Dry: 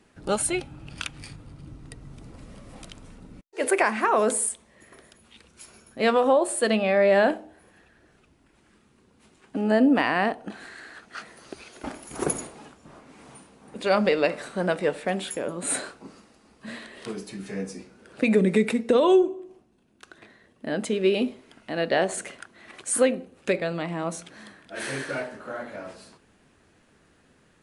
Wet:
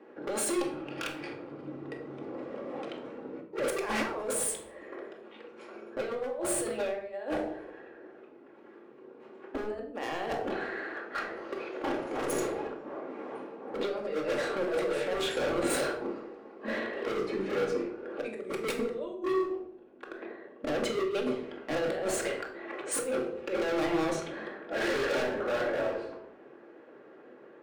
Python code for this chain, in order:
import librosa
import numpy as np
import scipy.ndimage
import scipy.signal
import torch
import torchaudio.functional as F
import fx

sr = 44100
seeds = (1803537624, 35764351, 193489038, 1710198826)

y = fx.env_lowpass(x, sr, base_hz=1600.0, full_db=-19.0)
y = fx.over_compress(y, sr, threshold_db=-29.0, ratio=-0.5)
y = fx.highpass_res(y, sr, hz=410.0, q=3.4)
y = np.clip(10.0 ** (28.5 / 20.0) * y, -1.0, 1.0) / 10.0 ** (28.5 / 20.0)
y = fx.room_shoebox(y, sr, seeds[0], volume_m3=1000.0, walls='furnished', distance_m=2.3)
y = y * 10.0 ** (-2.0 / 20.0)